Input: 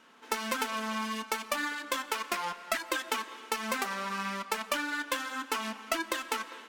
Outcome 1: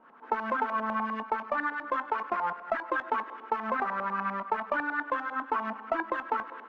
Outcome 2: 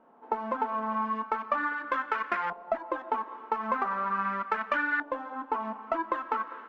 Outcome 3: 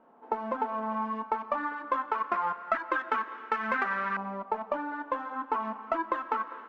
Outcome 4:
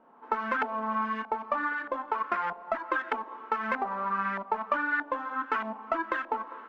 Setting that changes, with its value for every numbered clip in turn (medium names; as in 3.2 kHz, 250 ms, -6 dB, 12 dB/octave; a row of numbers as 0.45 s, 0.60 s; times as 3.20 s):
LFO low-pass, rate: 10 Hz, 0.4 Hz, 0.24 Hz, 1.6 Hz